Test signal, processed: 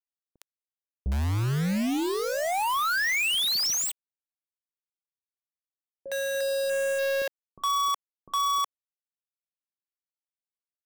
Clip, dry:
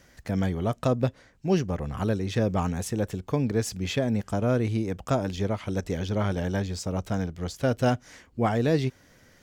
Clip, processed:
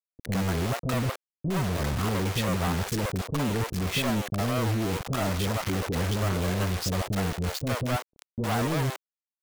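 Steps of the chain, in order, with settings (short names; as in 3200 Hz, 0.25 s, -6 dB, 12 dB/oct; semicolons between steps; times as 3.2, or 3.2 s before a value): one diode to ground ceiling -14.5 dBFS; treble ducked by the level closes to 1400 Hz, closed at -21 dBFS; high shelf 10000 Hz -5.5 dB; companded quantiser 2-bit; bands offset in time lows, highs 60 ms, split 490 Hz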